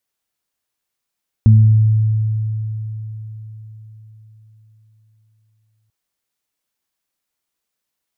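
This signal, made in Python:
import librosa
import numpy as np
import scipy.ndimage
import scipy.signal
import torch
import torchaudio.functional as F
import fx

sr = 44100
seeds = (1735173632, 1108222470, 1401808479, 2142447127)

y = fx.additive(sr, length_s=4.44, hz=109.0, level_db=-4.5, upper_db=(-9,), decay_s=4.58, upper_decays_s=(0.77,))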